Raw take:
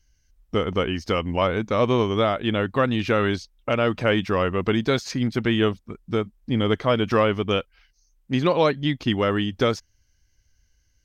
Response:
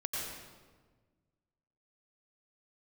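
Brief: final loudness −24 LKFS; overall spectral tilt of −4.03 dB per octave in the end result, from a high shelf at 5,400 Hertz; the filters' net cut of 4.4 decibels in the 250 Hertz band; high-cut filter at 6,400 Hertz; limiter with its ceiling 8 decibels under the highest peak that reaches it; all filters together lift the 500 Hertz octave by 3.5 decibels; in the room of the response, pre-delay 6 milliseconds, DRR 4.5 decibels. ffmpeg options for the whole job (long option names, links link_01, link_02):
-filter_complex "[0:a]lowpass=6400,equalizer=frequency=250:width_type=o:gain=-8,equalizer=frequency=500:width_type=o:gain=6,highshelf=frequency=5400:gain=9,alimiter=limit=-13.5dB:level=0:latency=1,asplit=2[link_01][link_02];[1:a]atrim=start_sample=2205,adelay=6[link_03];[link_02][link_03]afir=irnorm=-1:irlink=0,volume=-8dB[link_04];[link_01][link_04]amix=inputs=2:normalize=0"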